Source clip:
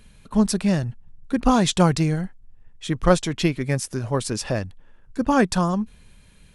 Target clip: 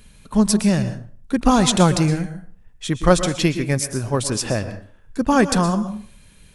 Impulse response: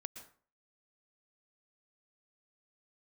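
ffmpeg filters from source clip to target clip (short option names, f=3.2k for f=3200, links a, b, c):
-filter_complex "[0:a]asplit=2[a][b];[b]highshelf=f=5.1k:g=7.5[c];[1:a]atrim=start_sample=2205[d];[c][d]afir=irnorm=-1:irlink=0,volume=10.5dB[e];[a][e]amix=inputs=2:normalize=0,volume=-7.5dB"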